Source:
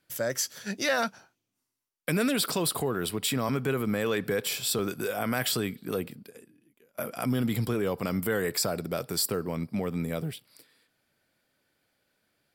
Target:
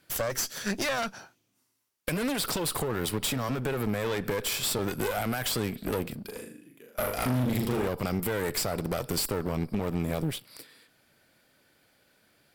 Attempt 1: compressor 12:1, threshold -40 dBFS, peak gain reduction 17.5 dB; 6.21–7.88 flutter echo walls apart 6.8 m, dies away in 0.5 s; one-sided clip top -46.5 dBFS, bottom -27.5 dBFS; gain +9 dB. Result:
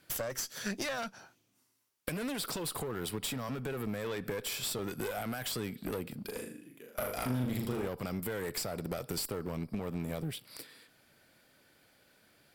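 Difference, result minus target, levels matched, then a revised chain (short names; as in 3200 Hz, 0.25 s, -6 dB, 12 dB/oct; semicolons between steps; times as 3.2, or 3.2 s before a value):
compressor: peak gain reduction +8.5 dB
compressor 12:1, threshold -30.5 dBFS, peak gain reduction 9 dB; 6.21–7.88 flutter echo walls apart 6.8 m, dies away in 0.5 s; one-sided clip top -46.5 dBFS, bottom -27.5 dBFS; gain +9 dB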